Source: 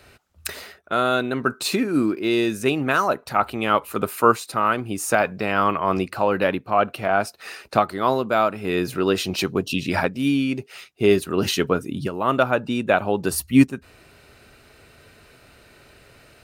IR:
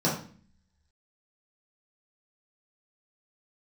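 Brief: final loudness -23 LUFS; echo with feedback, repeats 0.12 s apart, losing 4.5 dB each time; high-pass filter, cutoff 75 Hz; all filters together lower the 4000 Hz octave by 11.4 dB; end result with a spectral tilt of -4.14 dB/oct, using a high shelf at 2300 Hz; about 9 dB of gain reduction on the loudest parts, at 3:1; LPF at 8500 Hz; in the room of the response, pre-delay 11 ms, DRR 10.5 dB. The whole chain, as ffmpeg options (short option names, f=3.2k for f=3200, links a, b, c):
-filter_complex "[0:a]highpass=75,lowpass=8.5k,highshelf=f=2.3k:g=-8,equalizer=f=4k:t=o:g=-7.5,acompressor=threshold=-22dB:ratio=3,aecho=1:1:120|240|360|480|600|720|840|960|1080:0.596|0.357|0.214|0.129|0.0772|0.0463|0.0278|0.0167|0.01,asplit=2[a][b];[1:a]atrim=start_sample=2205,adelay=11[c];[b][c]afir=irnorm=-1:irlink=0,volume=-22.5dB[d];[a][d]amix=inputs=2:normalize=0,volume=1.5dB"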